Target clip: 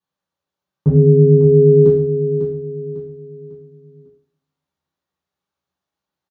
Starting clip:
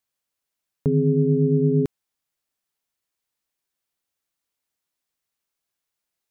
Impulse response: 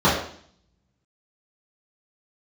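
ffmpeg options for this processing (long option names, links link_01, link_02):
-filter_complex "[0:a]aecho=1:1:549|1098|1647|2196:0.355|0.135|0.0512|0.0195[link_01];[1:a]atrim=start_sample=2205[link_02];[link_01][link_02]afir=irnorm=-1:irlink=0,volume=-18dB"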